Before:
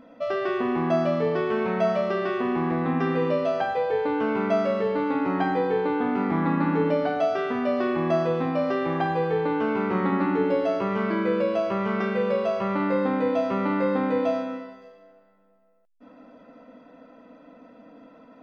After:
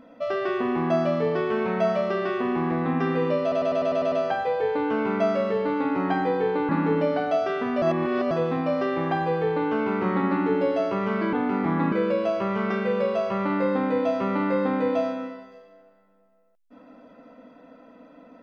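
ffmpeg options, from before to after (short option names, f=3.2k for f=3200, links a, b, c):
-filter_complex "[0:a]asplit=13[a][b][c][d][e][f][g][h][i][j][k][l][m];[a]atrim=end=3.522[n];[b]atrim=start=3.418:end=3.522[o];[c]atrim=start=3.418:end=3.522[p];[d]atrim=start=3.418:end=3.522[q];[e]atrim=start=3.418:end=3.522[r];[f]atrim=start=3.418:end=3.522[s];[g]atrim=start=3.418:end=3.522[t];[h]atrim=start=3.418:end=5.992[u];[i]atrim=start=6.578:end=7.712[v];[j]atrim=start=7.708:end=8.202,asetpts=PTS-STARTPTS,areverse[w];[k]atrim=start=8.198:end=11.222[x];[l]atrim=start=5.988:end=6.582[y];[m]atrim=start=11.218[z];[n][o]acrossfade=d=0.004:c1=hsin:c2=hsin[aa];[aa][p]acrossfade=d=0.004:c1=hsin:c2=hsin[ab];[ab][q]acrossfade=d=0.004:c1=hsin:c2=hsin[ac];[ac][r]acrossfade=d=0.004:c1=hsin:c2=hsin[ad];[ad][s]acrossfade=d=0.004:c1=hsin:c2=hsin[ae];[ae][t]acrossfade=d=0.004:c1=hsin:c2=hsin[af];[af][u]acrossfade=d=0.004:c1=hsin:c2=hsin[ag];[ag][v]acrossfade=d=0.004:c1=hsin:c2=hsin[ah];[ah][w]acrossfade=d=0.004:c1=hsin:c2=hsin[ai];[ai][x]acrossfade=d=0.004:c1=hsin:c2=hsin[aj];[aj][y]acrossfade=d=0.004:c1=hsin:c2=hsin[ak];[ak][z]acrossfade=d=0.004:c1=hsin:c2=hsin"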